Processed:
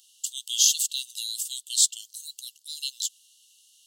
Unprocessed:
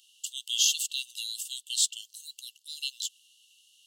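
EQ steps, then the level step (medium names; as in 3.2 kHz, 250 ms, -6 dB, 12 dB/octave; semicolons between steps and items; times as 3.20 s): peaking EQ 2.6 kHz -12 dB 0.73 oct; +6.5 dB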